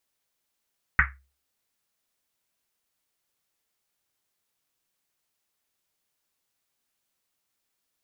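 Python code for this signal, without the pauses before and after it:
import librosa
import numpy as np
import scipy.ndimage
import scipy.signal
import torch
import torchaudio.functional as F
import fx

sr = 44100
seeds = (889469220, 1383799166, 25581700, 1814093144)

y = fx.risset_drum(sr, seeds[0], length_s=1.1, hz=67.0, decay_s=0.37, noise_hz=1700.0, noise_width_hz=930.0, noise_pct=65)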